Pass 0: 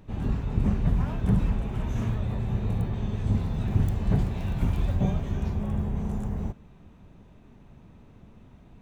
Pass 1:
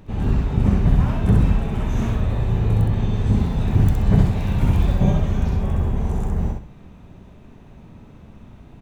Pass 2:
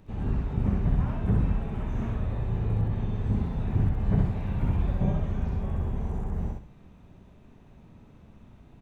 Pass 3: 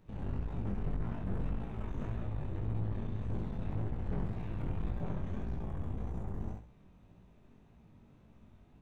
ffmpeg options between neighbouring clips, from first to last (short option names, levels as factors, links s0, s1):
-af "aecho=1:1:65|130|195|260:0.708|0.177|0.0442|0.0111,volume=2"
-filter_complex "[0:a]acrossover=split=2600[s0][s1];[s1]acompressor=threshold=0.00158:ratio=4:attack=1:release=60[s2];[s0][s2]amix=inputs=2:normalize=0,volume=0.376"
-af "aeval=exprs='(tanh(31.6*val(0)+0.8)-tanh(0.8))/31.6':c=same,flanger=delay=17:depth=4.8:speed=1.8"